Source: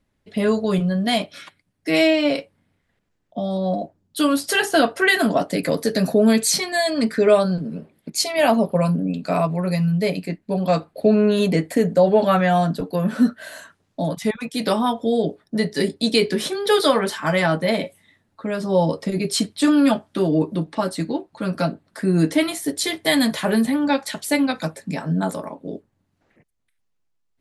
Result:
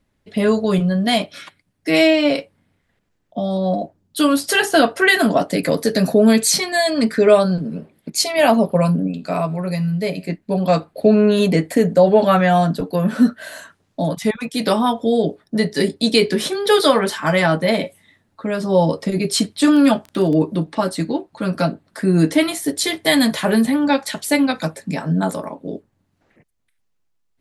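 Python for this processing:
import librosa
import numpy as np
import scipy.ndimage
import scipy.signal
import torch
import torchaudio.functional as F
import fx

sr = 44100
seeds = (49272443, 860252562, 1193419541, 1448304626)

y = fx.comb_fb(x, sr, f0_hz=80.0, decay_s=0.59, harmonics='all', damping=0.0, mix_pct=40, at=(9.07, 10.27), fade=0.02)
y = fx.dmg_crackle(y, sr, seeds[0], per_s=17.0, level_db=-27.0, at=(19.69, 20.35), fade=0.02)
y = F.gain(torch.from_numpy(y), 3.0).numpy()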